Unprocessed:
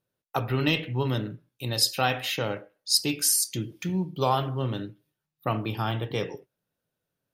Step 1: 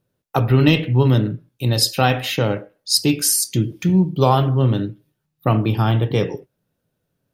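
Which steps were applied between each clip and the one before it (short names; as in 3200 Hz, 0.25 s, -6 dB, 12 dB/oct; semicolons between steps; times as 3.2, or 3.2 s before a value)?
low shelf 460 Hz +9 dB; gain +5 dB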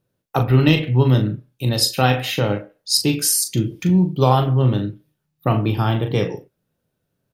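doubler 39 ms -8 dB; gain -1 dB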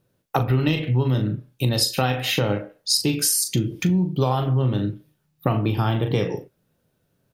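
compressor 4:1, threshold -24 dBFS, peak gain reduction 12.5 dB; gain +5 dB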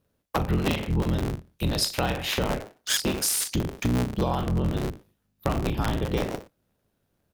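cycle switcher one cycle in 3, inverted; gain -4.5 dB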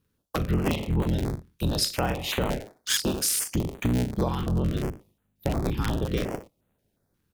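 stepped notch 5.6 Hz 640–5200 Hz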